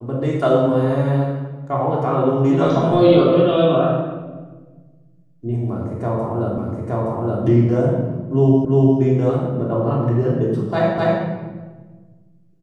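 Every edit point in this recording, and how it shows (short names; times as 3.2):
6.58 repeat of the last 0.87 s
8.65 repeat of the last 0.35 s
10.98 repeat of the last 0.25 s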